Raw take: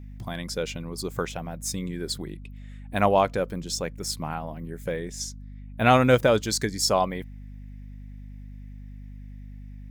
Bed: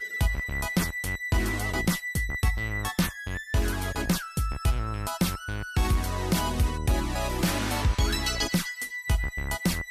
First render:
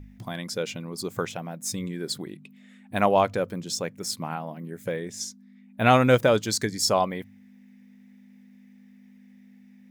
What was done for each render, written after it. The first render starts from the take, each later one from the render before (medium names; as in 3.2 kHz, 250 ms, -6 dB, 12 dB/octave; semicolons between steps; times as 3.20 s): de-hum 50 Hz, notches 3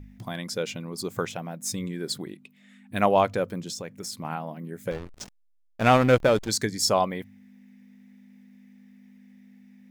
2.32–3.01 s: peaking EQ 110 Hz -> 950 Hz -12 dB; 3.69–4.25 s: compression, threshold -31 dBFS; 4.91–6.49 s: hysteresis with a dead band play -24 dBFS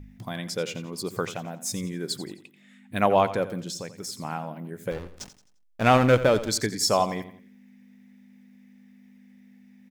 feedback delay 87 ms, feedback 39%, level -14 dB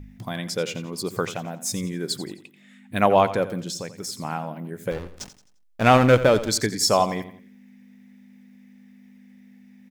trim +3 dB